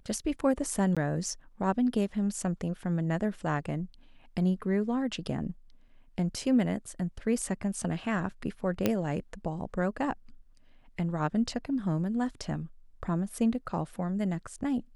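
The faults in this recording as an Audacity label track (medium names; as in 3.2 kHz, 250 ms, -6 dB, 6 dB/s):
0.950000	0.970000	dropout 16 ms
8.860000	8.860000	pop -11 dBFS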